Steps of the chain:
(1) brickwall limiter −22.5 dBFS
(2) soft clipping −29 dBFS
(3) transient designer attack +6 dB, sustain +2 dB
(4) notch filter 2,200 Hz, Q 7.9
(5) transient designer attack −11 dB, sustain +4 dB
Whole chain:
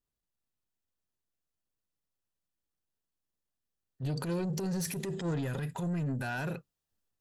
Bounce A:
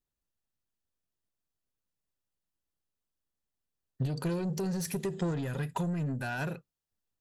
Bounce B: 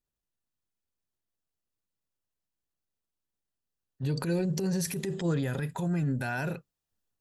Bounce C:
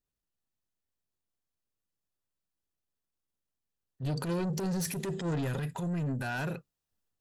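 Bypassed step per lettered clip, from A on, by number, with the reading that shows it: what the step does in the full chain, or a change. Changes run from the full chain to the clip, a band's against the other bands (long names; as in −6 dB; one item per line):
5, 8 kHz band −2.0 dB
2, distortion level −13 dB
1, average gain reduction 2.0 dB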